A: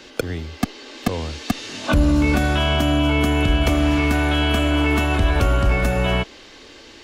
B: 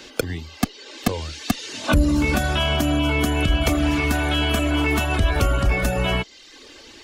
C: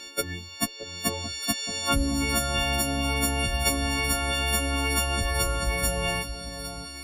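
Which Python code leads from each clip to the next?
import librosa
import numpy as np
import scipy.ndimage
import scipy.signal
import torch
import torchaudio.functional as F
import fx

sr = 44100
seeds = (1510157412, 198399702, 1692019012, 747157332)

y1 = fx.dereverb_blind(x, sr, rt60_s=0.74)
y1 = fx.high_shelf(y1, sr, hz=4600.0, db=6.0)
y2 = fx.freq_snap(y1, sr, grid_st=4)
y2 = fx.echo_alternate(y2, sr, ms=622, hz=950.0, feedback_pct=65, wet_db=-9)
y2 = F.gain(torch.from_numpy(y2), -7.5).numpy()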